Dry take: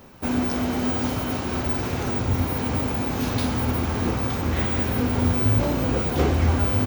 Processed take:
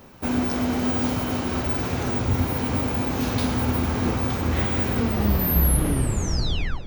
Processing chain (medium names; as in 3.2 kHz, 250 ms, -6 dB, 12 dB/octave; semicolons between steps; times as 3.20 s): tape stop on the ending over 1.93 s; two-band feedback delay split 2.4 kHz, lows 343 ms, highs 110 ms, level -13 dB